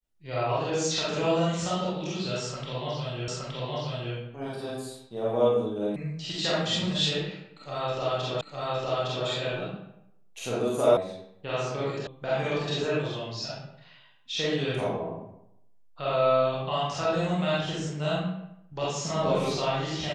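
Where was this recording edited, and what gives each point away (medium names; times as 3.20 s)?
3.28 s: repeat of the last 0.87 s
5.96 s: sound stops dead
8.41 s: repeat of the last 0.86 s
10.97 s: sound stops dead
12.07 s: sound stops dead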